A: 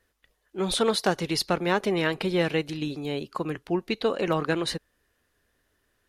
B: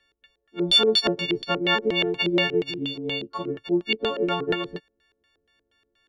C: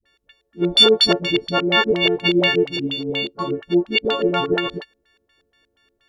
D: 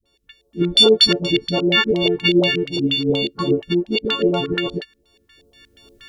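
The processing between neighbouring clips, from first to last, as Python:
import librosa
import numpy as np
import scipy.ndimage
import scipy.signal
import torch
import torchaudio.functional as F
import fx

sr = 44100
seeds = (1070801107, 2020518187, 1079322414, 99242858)

y1 = fx.freq_snap(x, sr, grid_st=4)
y1 = fx.filter_lfo_lowpass(y1, sr, shape='square', hz=4.2, low_hz=410.0, high_hz=3400.0, q=2.8)
y1 = y1 * 10.0 ** (-3.0 / 20.0)
y2 = fx.dispersion(y1, sr, late='highs', ms=57.0, hz=460.0)
y2 = y2 * 10.0 ** (5.5 / 20.0)
y3 = fx.recorder_agc(y2, sr, target_db=-9.5, rise_db_per_s=12.0, max_gain_db=30)
y3 = fx.phaser_stages(y3, sr, stages=2, low_hz=600.0, high_hz=1900.0, hz=2.6, feedback_pct=5)
y3 = y3 * 10.0 ** (3.0 / 20.0)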